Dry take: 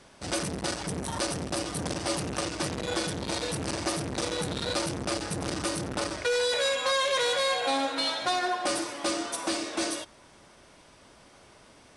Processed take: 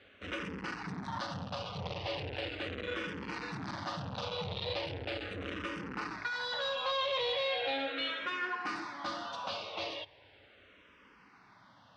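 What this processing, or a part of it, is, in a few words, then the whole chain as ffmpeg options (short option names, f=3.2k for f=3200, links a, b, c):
barber-pole phaser into a guitar amplifier: -filter_complex "[0:a]asplit=2[a][b];[b]afreqshift=-0.38[c];[a][c]amix=inputs=2:normalize=1,asoftclip=type=tanh:threshold=-26dB,highpass=93,equalizer=f=94:t=q:w=4:g=4,equalizer=f=150:t=q:w=4:g=-5,equalizer=f=240:t=q:w=4:g=-5,equalizer=f=350:t=q:w=4:g=-9,equalizer=f=650:t=q:w=4:g=-5,equalizer=f=2.8k:t=q:w=4:g=3,lowpass=f=3.8k:w=0.5412,lowpass=f=3.8k:w=1.3066"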